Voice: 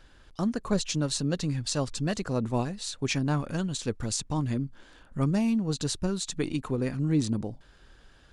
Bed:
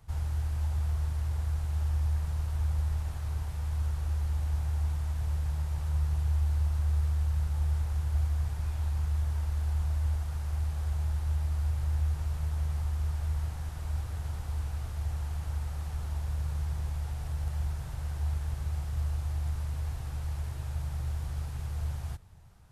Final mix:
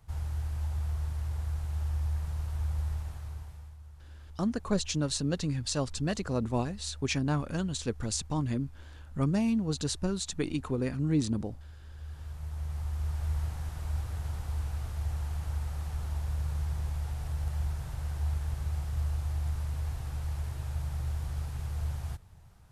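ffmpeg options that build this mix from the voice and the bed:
-filter_complex "[0:a]adelay=4000,volume=-2dB[a];[1:a]volume=16.5dB,afade=t=out:st=2.89:d=0.88:silence=0.149624,afade=t=in:st=11.92:d=1.41:silence=0.112202[b];[a][b]amix=inputs=2:normalize=0"

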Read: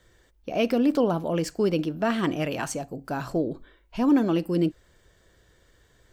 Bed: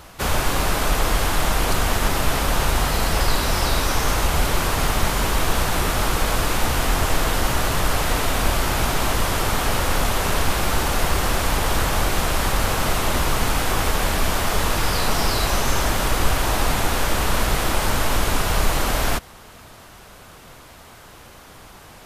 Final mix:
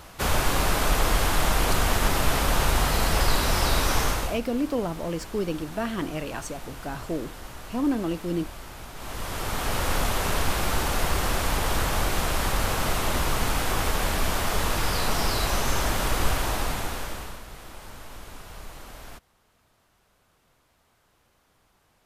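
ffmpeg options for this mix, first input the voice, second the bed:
-filter_complex "[0:a]adelay=3750,volume=-4.5dB[a];[1:a]volume=13dB,afade=t=out:st=4:d=0.4:silence=0.133352,afade=t=in:st=8.94:d=0.95:silence=0.16788,afade=t=out:st=16.29:d=1.12:silence=0.133352[b];[a][b]amix=inputs=2:normalize=0"

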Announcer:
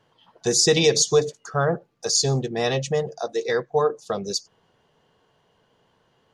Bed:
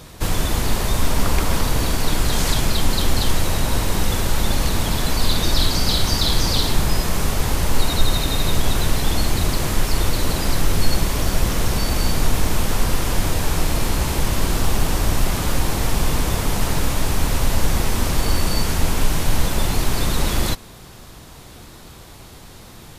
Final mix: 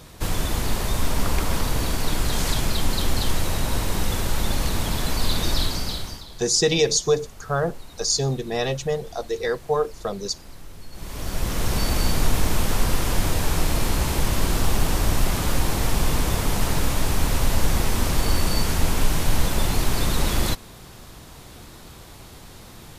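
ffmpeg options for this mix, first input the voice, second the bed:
-filter_complex "[0:a]adelay=5950,volume=-1.5dB[a];[1:a]volume=17.5dB,afade=t=out:st=5.51:d=0.74:silence=0.105925,afade=t=in:st=10.92:d=0.9:silence=0.0841395[b];[a][b]amix=inputs=2:normalize=0"

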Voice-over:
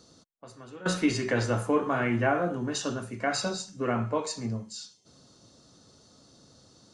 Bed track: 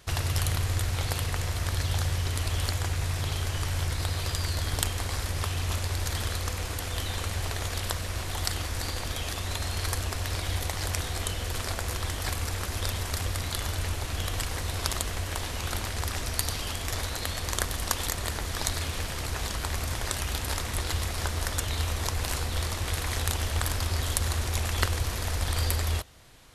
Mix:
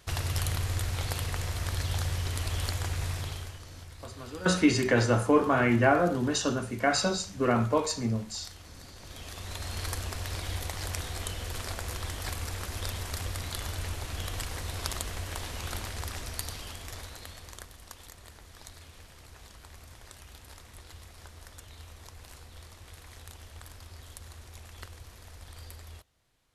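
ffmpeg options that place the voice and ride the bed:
-filter_complex "[0:a]adelay=3600,volume=3dB[a];[1:a]volume=10dB,afade=t=out:st=3.08:d=0.54:silence=0.188365,afade=t=in:st=8.96:d=0.83:silence=0.223872,afade=t=out:st=15.75:d=1.99:silence=0.188365[b];[a][b]amix=inputs=2:normalize=0"

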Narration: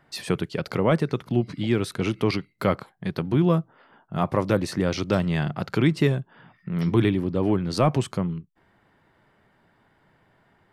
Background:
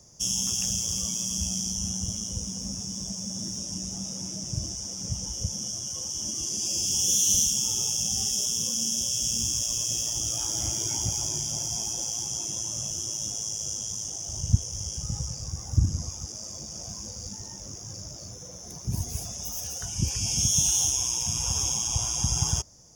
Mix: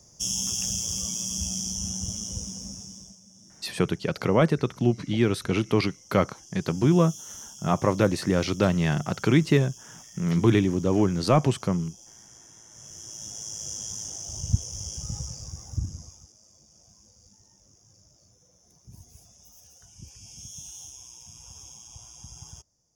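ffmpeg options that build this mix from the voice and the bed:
-filter_complex "[0:a]adelay=3500,volume=0.5dB[a];[1:a]volume=16.5dB,afade=t=out:st=2.36:d=0.84:silence=0.11885,afade=t=in:st=12.69:d=1.14:silence=0.133352,afade=t=out:st=15.15:d=1.19:silence=0.141254[b];[a][b]amix=inputs=2:normalize=0"

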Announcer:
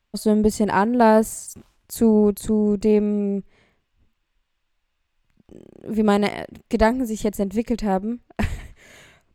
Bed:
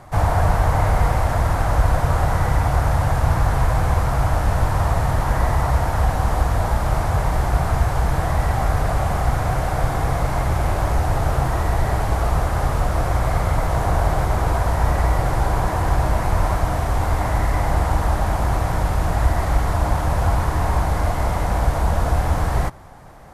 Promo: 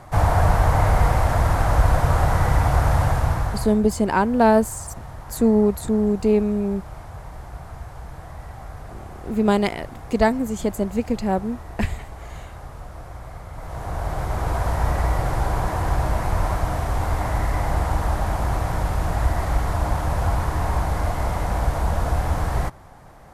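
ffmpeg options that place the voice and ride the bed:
-filter_complex "[0:a]adelay=3400,volume=-0.5dB[a];[1:a]volume=14.5dB,afade=t=out:st=3.01:d=0.79:silence=0.133352,afade=t=in:st=13.52:d=1.15:silence=0.188365[b];[a][b]amix=inputs=2:normalize=0"

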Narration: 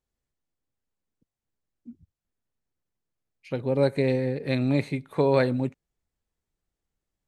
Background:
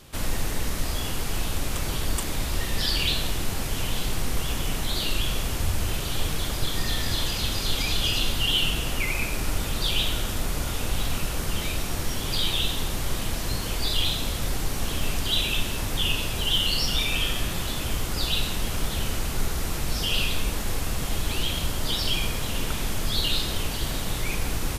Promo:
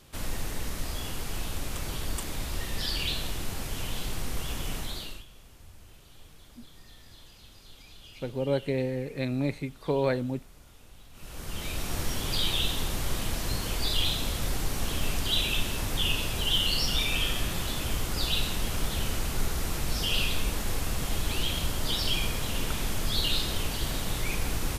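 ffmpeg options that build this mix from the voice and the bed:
-filter_complex "[0:a]adelay=4700,volume=-5dB[a];[1:a]volume=17dB,afade=t=out:st=4.77:d=0.48:silence=0.105925,afade=t=in:st=11.13:d=0.86:silence=0.0707946[b];[a][b]amix=inputs=2:normalize=0"

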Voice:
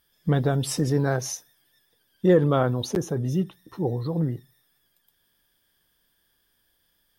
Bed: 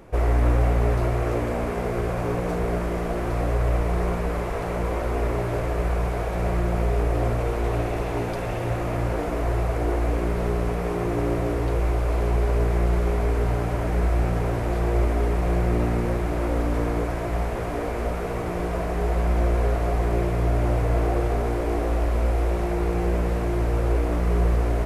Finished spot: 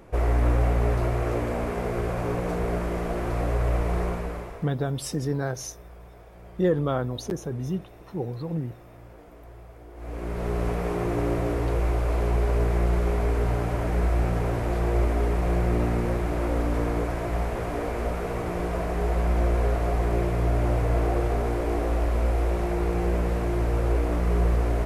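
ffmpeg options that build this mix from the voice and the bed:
-filter_complex "[0:a]adelay=4350,volume=-4.5dB[a];[1:a]volume=18.5dB,afade=t=out:st=3.97:d=0.75:silence=0.1,afade=t=in:st=9.94:d=0.72:silence=0.0944061[b];[a][b]amix=inputs=2:normalize=0"

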